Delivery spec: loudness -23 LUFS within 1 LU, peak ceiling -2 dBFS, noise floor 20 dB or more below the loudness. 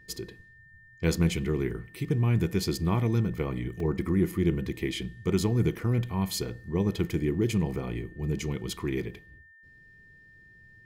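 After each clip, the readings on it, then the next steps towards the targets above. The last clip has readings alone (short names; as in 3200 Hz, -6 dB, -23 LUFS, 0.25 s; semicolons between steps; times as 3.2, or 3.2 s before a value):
dropouts 1; longest dropout 2.6 ms; steady tone 1800 Hz; tone level -53 dBFS; loudness -29.0 LUFS; peak -13.0 dBFS; loudness target -23.0 LUFS
-> interpolate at 3.8, 2.6 ms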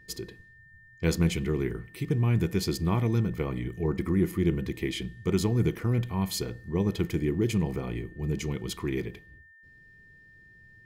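dropouts 0; steady tone 1800 Hz; tone level -53 dBFS
-> notch 1800 Hz, Q 30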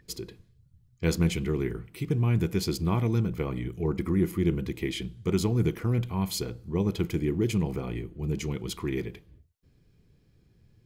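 steady tone none; loudness -29.0 LUFS; peak -13.0 dBFS; loudness target -23.0 LUFS
-> gain +6 dB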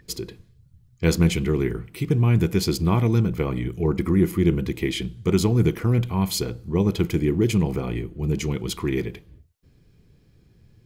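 loudness -23.0 LUFS; peak -7.0 dBFS; noise floor -58 dBFS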